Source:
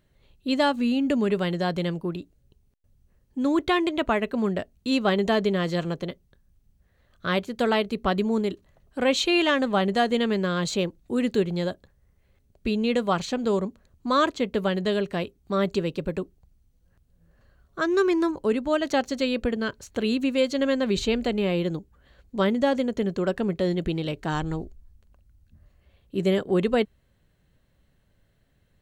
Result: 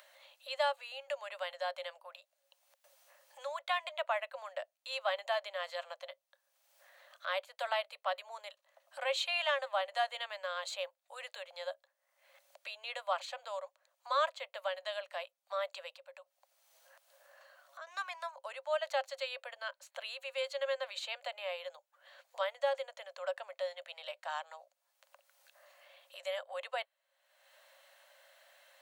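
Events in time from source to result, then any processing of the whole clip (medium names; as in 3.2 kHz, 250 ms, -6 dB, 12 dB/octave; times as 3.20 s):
15.97–17.87 s: compression 2:1, threshold -46 dBFS
whole clip: Chebyshev high-pass 540 Hz, order 8; dynamic bell 5.9 kHz, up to -7 dB, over -55 dBFS, Q 2.8; upward compressor, threshold -37 dBFS; trim -8 dB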